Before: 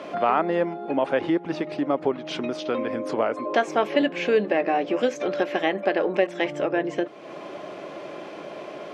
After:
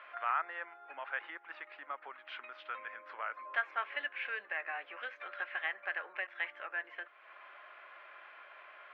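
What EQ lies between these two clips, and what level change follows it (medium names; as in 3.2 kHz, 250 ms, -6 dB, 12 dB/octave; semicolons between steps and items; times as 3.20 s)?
ladder band-pass 1.8 kHz, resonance 40%; distance through air 480 m; tilt EQ +3 dB/octave; +4.0 dB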